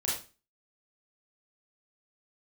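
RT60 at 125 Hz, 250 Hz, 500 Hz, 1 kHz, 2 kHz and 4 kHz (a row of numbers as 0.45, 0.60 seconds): 0.40, 0.40, 0.35, 0.30, 0.30, 0.30 seconds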